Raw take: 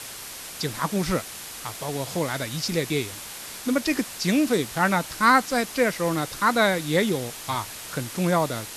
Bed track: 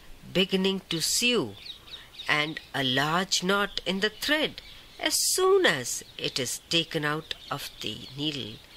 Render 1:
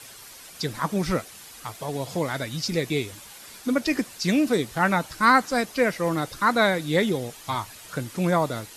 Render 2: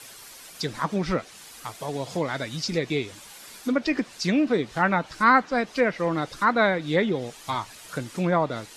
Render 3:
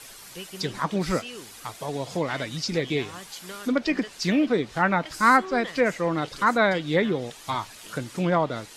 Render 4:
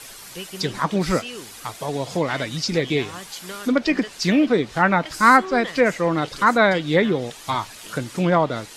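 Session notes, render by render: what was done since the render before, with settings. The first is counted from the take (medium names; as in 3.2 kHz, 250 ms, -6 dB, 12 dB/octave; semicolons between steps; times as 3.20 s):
noise reduction 9 dB, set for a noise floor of -38 dBFS
low-pass that closes with the level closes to 3 kHz, closed at -18.5 dBFS; peaking EQ 78 Hz -6.5 dB 1.3 oct
add bed track -15.5 dB
trim +4.5 dB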